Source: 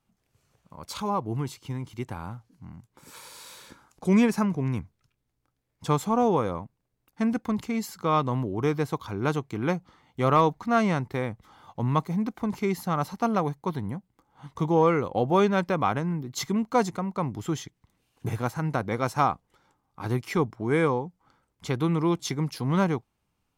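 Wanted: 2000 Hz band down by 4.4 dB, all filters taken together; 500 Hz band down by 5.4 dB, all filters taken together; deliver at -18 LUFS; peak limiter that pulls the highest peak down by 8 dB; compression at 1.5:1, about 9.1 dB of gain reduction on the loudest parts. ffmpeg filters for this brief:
-af "equalizer=f=500:t=o:g=-6.5,equalizer=f=2k:t=o:g=-5.5,acompressor=threshold=-44dB:ratio=1.5,volume=22dB,alimiter=limit=-7.5dB:level=0:latency=1"

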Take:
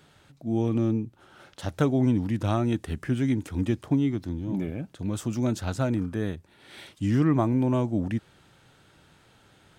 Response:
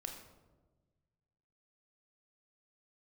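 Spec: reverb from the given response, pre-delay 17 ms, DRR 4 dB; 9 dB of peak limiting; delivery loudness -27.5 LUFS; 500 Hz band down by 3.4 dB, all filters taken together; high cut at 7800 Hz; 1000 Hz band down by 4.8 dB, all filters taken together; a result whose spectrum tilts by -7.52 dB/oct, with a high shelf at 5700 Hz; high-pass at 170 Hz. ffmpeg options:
-filter_complex "[0:a]highpass=170,lowpass=7.8k,equalizer=f=500:t=o:g=-3.5,equalizer=f=1k:t=o:g=-5.5,highshelf=f=5.7k:g=3.5,alimiter=limit=-21dB:level=0:latency=1,asplit=2[a][b];[1:a]atrim=start_sample=2205,adelay=17[c];[b][c]afir=irnorm=-1:irlink=0,volume=-2dB[d];[a][d]amix=inputs=2:normalize=0,volume=3dB"

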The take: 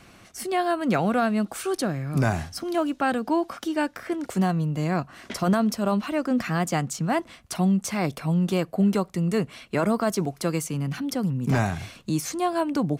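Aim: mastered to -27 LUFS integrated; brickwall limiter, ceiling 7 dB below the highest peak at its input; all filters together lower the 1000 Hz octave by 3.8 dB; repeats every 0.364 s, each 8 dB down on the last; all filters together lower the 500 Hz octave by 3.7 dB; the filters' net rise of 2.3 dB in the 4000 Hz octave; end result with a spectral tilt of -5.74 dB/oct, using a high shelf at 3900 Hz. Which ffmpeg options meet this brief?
-af "equalizer=f=500:t=o:g=-4,equalizer=f=1k:t=o:g=-3.5,highshelf=f=3.9k:g=-8,equalizer=f=4k:t=o:g=8.5,alimiter=limit=-20.5dB:level=0:latency=1,aecho=1:1:364|728|1092|1456|1820:0.398|0.159|0.0637|0.0255|0.0102,volume=2dB"

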